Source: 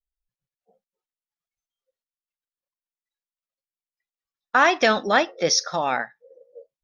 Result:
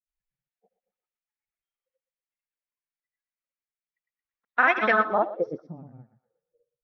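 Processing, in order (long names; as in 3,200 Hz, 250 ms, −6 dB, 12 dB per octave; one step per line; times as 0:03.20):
granular cloud, grains 20 per second, pitch spread up and down by 0 semitones
feedback echo with a high-pass in the loop 119 ms, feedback 53%, high-pass 890 Hz, level −9.5 dB
low-pass filter sweep 2,200 Hz → 130 Hz, 0:04.83–0:05.94
level −5 dB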